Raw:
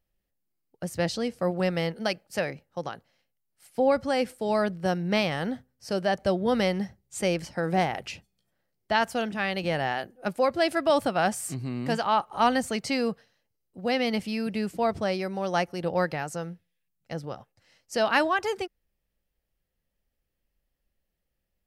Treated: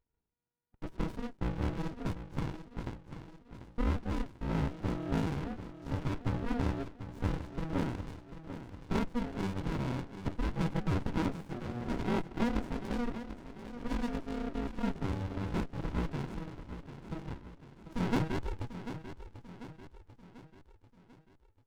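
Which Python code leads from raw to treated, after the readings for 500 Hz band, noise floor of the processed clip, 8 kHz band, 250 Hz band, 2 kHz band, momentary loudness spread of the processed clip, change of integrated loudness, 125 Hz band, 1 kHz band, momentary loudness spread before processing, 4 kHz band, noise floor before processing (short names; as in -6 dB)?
-14.5 dB, -67 dBFS, -16.0 dB, -5.0 dB, -14.0 dB, 15 LU, -9.5 dB, +0.5 dB, -13.5 dB, 13 LU, -15.0 dB, -80 dBFS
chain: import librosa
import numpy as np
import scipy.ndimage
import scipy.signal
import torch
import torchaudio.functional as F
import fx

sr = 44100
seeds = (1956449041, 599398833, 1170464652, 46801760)

p1 = fx.rattle_buzz(x, sr, strikes_db=-42.0, level_db=-33.0)
p2 = p1 * np.sin(2.0 * np.pi * 480.0 * np.arange(len(p1)) / sr)
p3 = 10.0 ** (-20.0 / 20.0) * np.tanh(p2 / 10.0 ** (-20.0 / 20.0))
p4 = p2 + (p3 * 10.0 ** (-4.0 / 20.0))
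p5 = fx.air_absorb(p4, sr, metres=120.0)
p6 = p5 + fx.echo_feedback(p5, sr, ms=742, feedback_pct=50, wet_db=-11, dry=0)
p7 = fx.running_max(p6, sr, window=65)
y = p7 * 10.0 ** (-6.0 / 20.0)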